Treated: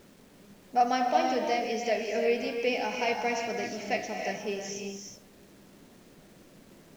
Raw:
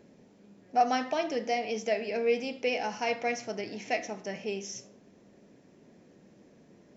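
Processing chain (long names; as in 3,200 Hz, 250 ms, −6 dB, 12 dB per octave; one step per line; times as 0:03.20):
reverb whose tail is shaped and stops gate 390 ms rising, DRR 2.5 dB
bit-depth reduction 10 bits, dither none
background noise pink −63 dBFS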